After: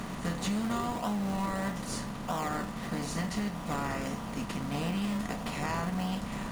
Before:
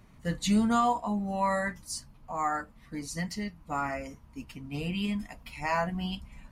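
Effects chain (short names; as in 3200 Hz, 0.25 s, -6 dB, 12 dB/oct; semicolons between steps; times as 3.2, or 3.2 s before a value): per-bin compression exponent 0.4; in parallel at -4 dB: decimation with a swept rate 38×, swing 100% 1.6 Hz; on the sum: compressor, threshold -22 dBFS, peak gain reduction 7 dB; gain -6.5 dB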